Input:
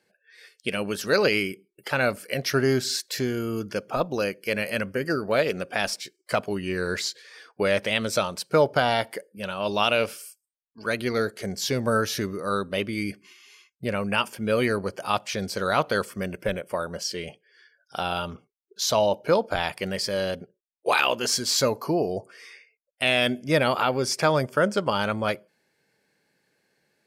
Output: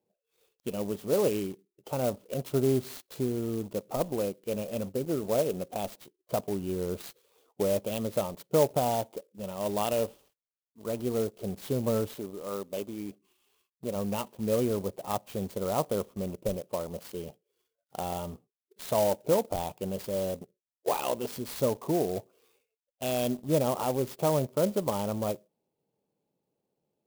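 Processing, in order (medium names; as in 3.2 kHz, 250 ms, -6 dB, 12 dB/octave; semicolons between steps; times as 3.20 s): 12.12–13.95 s: high-pass 520 Hz -> 240 Hz 6 dB/octave; in parallel at -5 dB: word length cut 6-bit, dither none; on the sum: Butterworth band-stop 1.8 kHz, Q 0.8; distance through air 290 m; sampling jitter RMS 0.054 ms; trim -6.5 dB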